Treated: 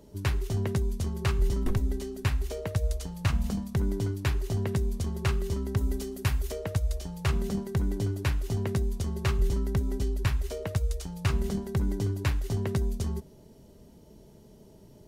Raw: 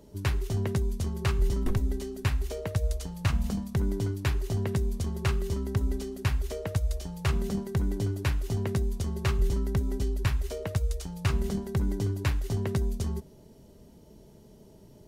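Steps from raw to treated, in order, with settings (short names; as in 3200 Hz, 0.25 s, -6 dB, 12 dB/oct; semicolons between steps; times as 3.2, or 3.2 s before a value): 5.78–6.52 high shelf 8500 Hz +8.5 dB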